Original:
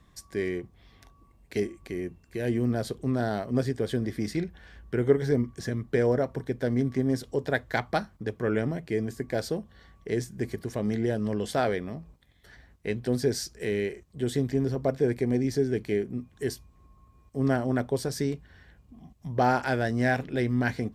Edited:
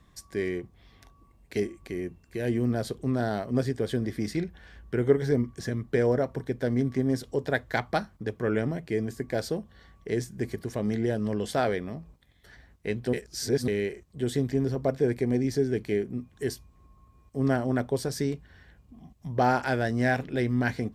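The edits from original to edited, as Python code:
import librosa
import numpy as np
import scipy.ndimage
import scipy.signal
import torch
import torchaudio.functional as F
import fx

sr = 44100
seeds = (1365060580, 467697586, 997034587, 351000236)

y = fx.edit(x, sr, fx.reverse_span(start_s=13.13, length_s=0.55), tone=tone)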